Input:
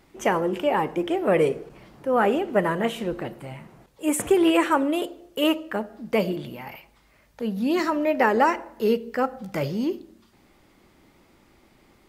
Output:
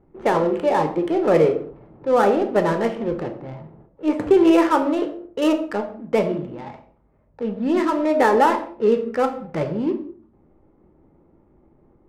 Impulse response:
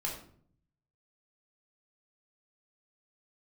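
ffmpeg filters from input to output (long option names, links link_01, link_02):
-filter_complex "[0:a]lowpass=frequency=1300:poles=1,adynamicsmooth=sensitivity=7.5:basefreq=640,asplit=2[link_01][link_02];[1:a]atrim=start_sample=2205,afade=type=out:start_time=0.27:duration=0.01,atrim=end_sample=12348,lowshelf=frequency=130:gain=-8.5[link_03];[link_02][link_03]afir=irnorm=-1:irlink=0,volume=-2.5dB[link_04];[link_01][link_04]amix=inputs=2:normalize=0"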